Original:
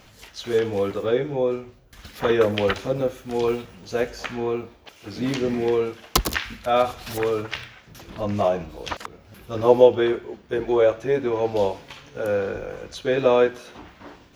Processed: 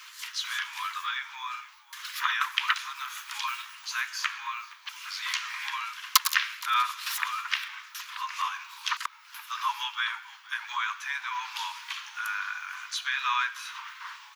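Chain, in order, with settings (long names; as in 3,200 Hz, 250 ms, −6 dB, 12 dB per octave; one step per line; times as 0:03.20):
Butterworth high-pass 980 Hz 96 dB per octave
in parallel at +2.5 dB: downward compressor, threshold −40 dBFS, peak gain reduction 23 dB
on the sum: echo with shifted repeats 469 ms, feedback 44%, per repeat −62 Hz, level −22 dB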